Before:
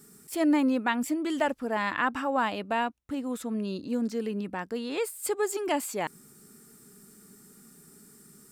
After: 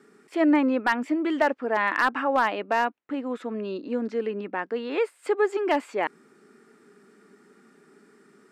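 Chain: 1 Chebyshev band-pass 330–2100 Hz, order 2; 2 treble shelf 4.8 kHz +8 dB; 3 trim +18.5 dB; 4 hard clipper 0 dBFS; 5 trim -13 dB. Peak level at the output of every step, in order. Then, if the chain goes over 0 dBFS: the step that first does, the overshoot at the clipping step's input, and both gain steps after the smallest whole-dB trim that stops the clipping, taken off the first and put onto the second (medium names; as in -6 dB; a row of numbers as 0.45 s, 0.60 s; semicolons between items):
-13.5 dBFS, -13.0 dBFS, +5.5 dBFS, 0.0 dBFS, -13.0 dBFS; step 3, 5.5 dB; step 3 +12.5 dB, step 5 -7 dB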